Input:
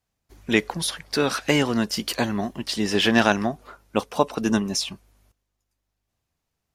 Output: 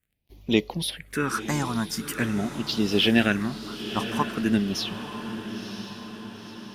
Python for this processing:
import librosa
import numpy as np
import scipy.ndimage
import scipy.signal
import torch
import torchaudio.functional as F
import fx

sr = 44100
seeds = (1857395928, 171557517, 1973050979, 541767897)

y = fx.dmg_crackle(x, sr, seeds[0], per_s=31.0, level_db=-49.0)
y = fx.phaser_stages(y, sr, stages=4, low_hz=430.0, high_hz=1600.0, hz=0.45, feedback_pct=20)
y = fx.echo_diffused(y, sr, ms=983, feedback_pct=55, wet_db=-10)